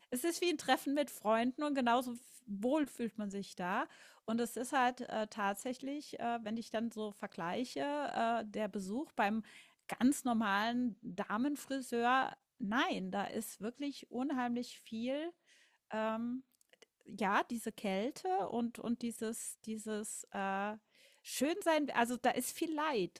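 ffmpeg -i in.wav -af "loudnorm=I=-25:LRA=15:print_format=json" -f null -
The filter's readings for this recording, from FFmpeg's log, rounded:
"input_i" : "-37.1",
"input_tp" : "-17.9",
"input_lra" : "4.3",
"input_thresh" : "-47.5",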